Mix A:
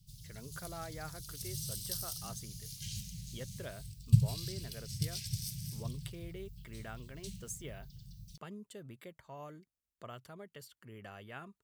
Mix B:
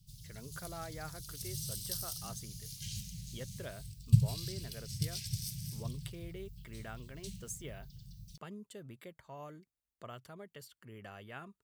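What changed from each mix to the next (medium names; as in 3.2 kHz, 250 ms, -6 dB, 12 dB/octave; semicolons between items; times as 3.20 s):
no change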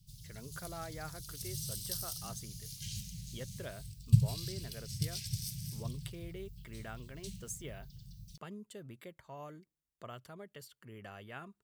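reverb: on, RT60 0.45 s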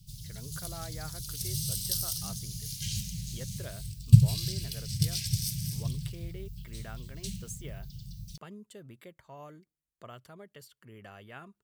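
background +8.0 dB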